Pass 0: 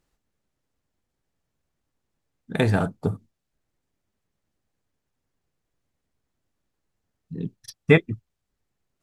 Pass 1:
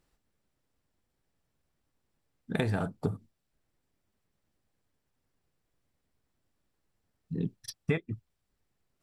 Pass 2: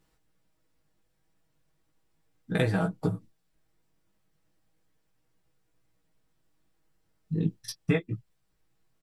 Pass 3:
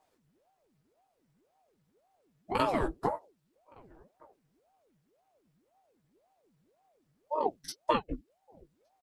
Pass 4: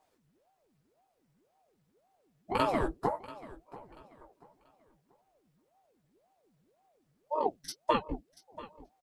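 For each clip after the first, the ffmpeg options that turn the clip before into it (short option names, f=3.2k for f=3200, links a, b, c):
-af "acompressor=threshold=-26dB:ratio=8,bandreject=f=6.5k:w=13"
-af "flanger=delay=16:depth=4.8:speed=0.36,aecho=1:1:6.3:0.6,volume=5.5dB"
-filter_complex "[0:a]asplit=2[a][b];[b]adelay=1166,volume=-27dB,highshelf=f=4k:g=-26.2[c];[a][c]amix=inputs=2:normalize=0,aeval=exprs='val(0)*sin(2*PI*460*n/s+460*0.7/1.9*sin(2*PI*1.9*n/s))':c=same"
-af "aecho=1:1:686|1372|2058:0.126|0.0378|0.0113"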